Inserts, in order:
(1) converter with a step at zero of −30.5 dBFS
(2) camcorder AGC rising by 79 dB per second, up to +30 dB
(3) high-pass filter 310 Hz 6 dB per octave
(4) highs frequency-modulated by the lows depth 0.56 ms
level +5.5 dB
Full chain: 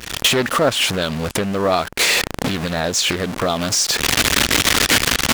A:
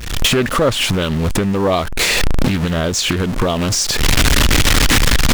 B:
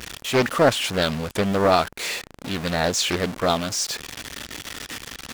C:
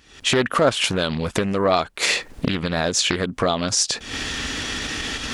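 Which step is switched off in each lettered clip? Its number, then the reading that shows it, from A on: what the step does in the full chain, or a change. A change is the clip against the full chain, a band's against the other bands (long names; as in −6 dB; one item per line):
3, 125 Hz band +8.5 dB
2, change in crest factor +5.5 dB
1, distortion level −11 dB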